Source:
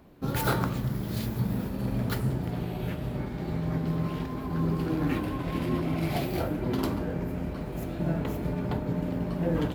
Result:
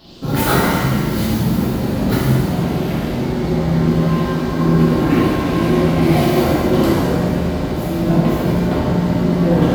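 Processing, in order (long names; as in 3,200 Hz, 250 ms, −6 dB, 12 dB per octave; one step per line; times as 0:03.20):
noise in a band 2,800–5,100 Hz −58 dBFS
reverb with rising layers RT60 1.5 s, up +7 semitones, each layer −8 dB, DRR −7 dB
level +5 dB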